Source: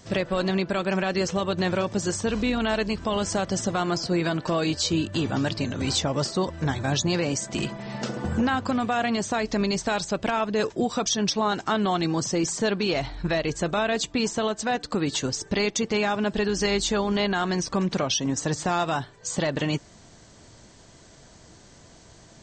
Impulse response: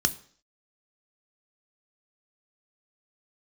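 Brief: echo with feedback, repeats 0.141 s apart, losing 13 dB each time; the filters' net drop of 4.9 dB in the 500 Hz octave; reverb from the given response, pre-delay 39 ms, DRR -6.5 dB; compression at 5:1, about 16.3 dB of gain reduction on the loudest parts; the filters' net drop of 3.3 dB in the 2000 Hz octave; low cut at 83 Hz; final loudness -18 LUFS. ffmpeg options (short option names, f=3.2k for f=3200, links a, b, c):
-filter_complex "[0:a]highpass=83,equalizer=f=500:t=o:g=-6.5,equalizer=f=2k:t=o:g=-4,acompressor=threshold=-42dB:ratio=5,aecho=1:1:141|282|423:0.224|0.0493|0.0108,asplit=2[a][b];[1:a]atrim=start_sample=2205,adelay=39[c];[b][c]afir=irnorm=-1:irlink=0,volume=-2.5dB[d];[a][d]amix=inputs=2:normalize=0,volume=15.5dB"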